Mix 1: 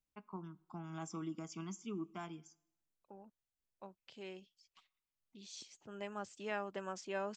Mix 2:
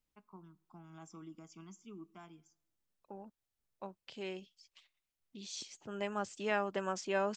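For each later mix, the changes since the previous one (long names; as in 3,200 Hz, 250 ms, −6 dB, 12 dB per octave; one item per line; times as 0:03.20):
first voice −8.0 dB
second voice +6.5 dB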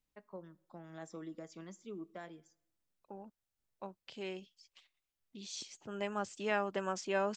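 first voice: remove phaser with its sweep stopped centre 2,700 Hz, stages 8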